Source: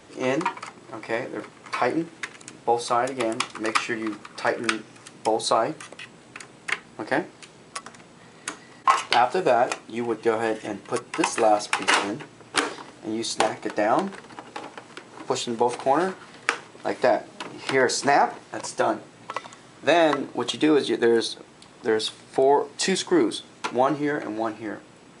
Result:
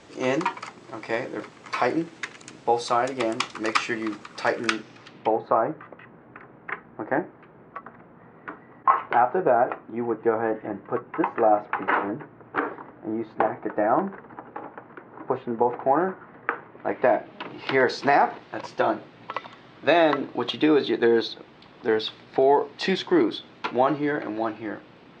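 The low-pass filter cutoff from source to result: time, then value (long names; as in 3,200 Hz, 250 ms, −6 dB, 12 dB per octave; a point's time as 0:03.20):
low-pass filter 24 dB per octave
0:04.68 7,400 Hz
0:05.17 4,000 Hz
0:05.44 1,700 Hz
0:16.55 1,700 Hz
0:17.64 4,100 Hz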